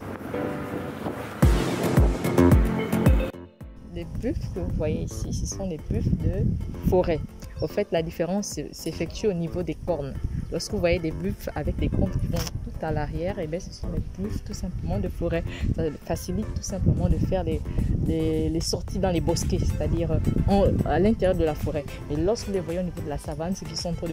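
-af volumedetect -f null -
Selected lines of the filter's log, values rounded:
mean_volume: -25.2 dB
max_volume: -6.7 dB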